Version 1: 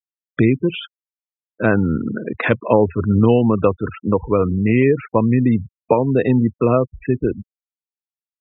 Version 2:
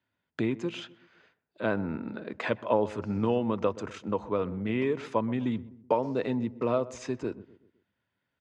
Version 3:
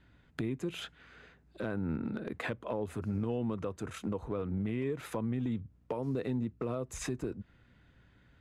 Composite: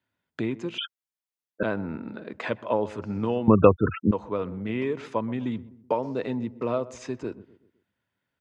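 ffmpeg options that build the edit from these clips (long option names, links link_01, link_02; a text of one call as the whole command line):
ffmpeg -i take0.wav -i take1.wav -filter_complex "[0:a]asplit=2[link_01][link_02];[1:a]asplit=3[link_03][link_04][link_05];[link_03]atrim=end=0.782[link_06];[link_01]atrim=start=0.778:end=1.632[link_07];[link_04]atrim=start=1.628:end=3.482[link_08];[link_02]atrim=start=3.478:end=4.112[link_09];[link_05]atrim=start=4.108[link_10];[link_06][link_07]acrossfade=duration=0.004:curve1=hsin:curve2=hsin[link_11];[link_11][link_08]acrossfade=duration=0.004:curve1=hsin:curve2=hsin[link_12];[link_12][link_09]acrossfade=duration=0.004:curve1=hsin:curve2=hsin[link_13];[link_13][link_10]acrossfade=duration=0.004:curve1=hsin:curve2=hsin" out.wav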